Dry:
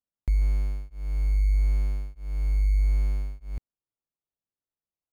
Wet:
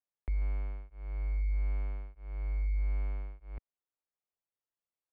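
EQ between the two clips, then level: distance through air 270 m; three-band isolator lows -14 dB, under 360 Hz, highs -19 dB, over 3.3 kHz; bass shelf 110 Hz +6 dB; 0.0 dB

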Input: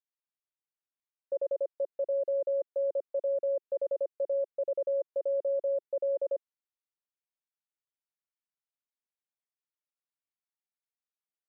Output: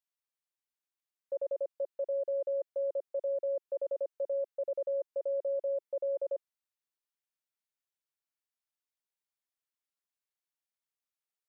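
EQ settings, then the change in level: bass shelf 320 Hz -11.5 dB; 0.0 dB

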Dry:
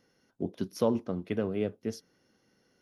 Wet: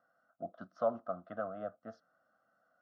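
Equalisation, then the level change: two resonant band-passes 930 Hz, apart 0.95 oct; distance through air 170 m; static phaser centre 980 Hz, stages 4; +12.0 dB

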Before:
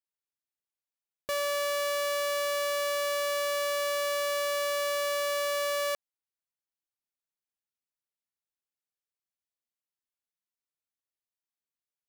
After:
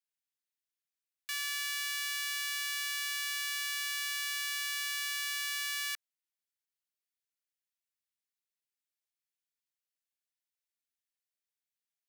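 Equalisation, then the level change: steep high-pass 1.5 kHz 36 dB/octave; 0.0 dB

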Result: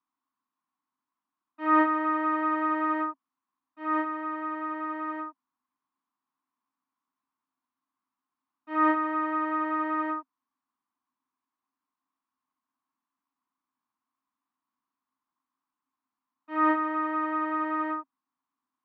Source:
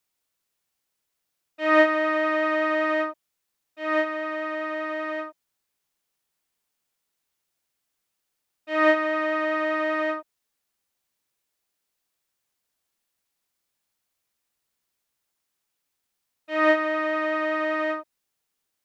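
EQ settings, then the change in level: two resonant band-passes 530 Hz, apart 2 oct; peaking EQ 690 Hz +5.5 dB 0.7 oct; +8.5 dB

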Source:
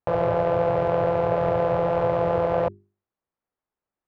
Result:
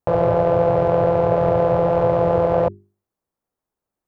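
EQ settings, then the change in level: peaking EQ 2.3 kHz -6.5 dB 2.5 oct; +6.5 dB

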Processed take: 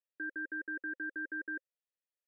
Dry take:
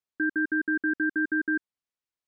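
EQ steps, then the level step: vowel filter e; bass shelf 270 Hz -8 dB; +4.0 dB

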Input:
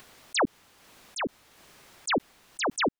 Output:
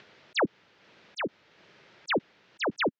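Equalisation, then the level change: distance through air 210 m; cabinet simulation 140–6800 Hz, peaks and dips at 260 Hz -7 dB, 750 Hz -6 dB, 1.1 kHz -7 dB; +2.5 dB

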